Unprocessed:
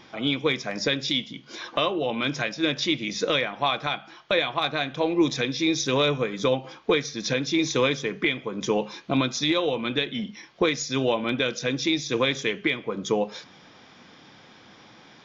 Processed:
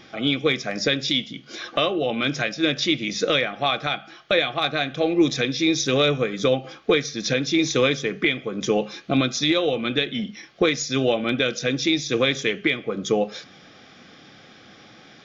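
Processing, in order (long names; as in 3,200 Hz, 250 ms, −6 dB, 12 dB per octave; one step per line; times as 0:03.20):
Butterworth band-reject 960 Hz, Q 4
level +3 dB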